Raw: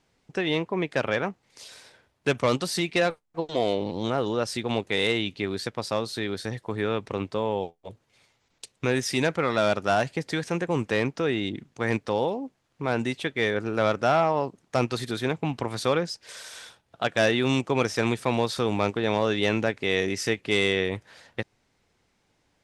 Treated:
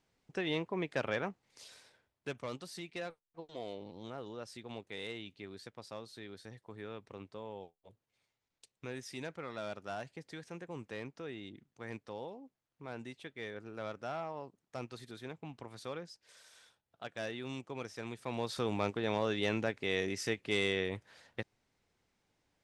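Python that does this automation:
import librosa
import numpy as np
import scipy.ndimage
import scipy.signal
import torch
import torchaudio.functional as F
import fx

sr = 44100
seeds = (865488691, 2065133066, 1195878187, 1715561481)

y = fx.gain(x, sr, db=fx.line((1.66, -9.0), (2.45, -18.5), (18.1, -18.5), (18.57, -9.0)))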